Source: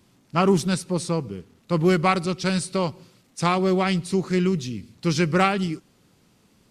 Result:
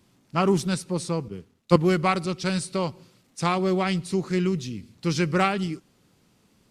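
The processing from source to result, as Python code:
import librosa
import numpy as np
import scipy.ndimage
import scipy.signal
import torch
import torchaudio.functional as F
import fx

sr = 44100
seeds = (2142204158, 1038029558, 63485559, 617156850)

y = fx.band_widen(x, sr, depth_pct=100, at=(1.28, 1.76))
y = y * librosa.db_to_amplitude(-2.5)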